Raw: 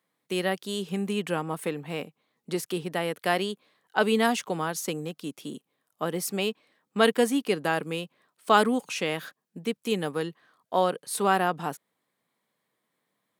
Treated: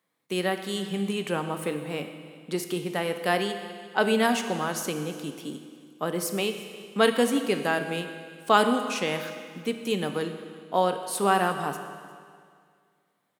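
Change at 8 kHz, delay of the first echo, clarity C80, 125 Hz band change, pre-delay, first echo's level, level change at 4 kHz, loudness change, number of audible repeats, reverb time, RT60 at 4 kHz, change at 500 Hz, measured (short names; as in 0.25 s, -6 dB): +0.5 dB, 0.355 s, 9.0 dB, +0.5 dB, 10 ms, -22.5 dB, +1.0 dB, +0.5 dB, 1, 2.1 s, 2.0 s, +0.5 dB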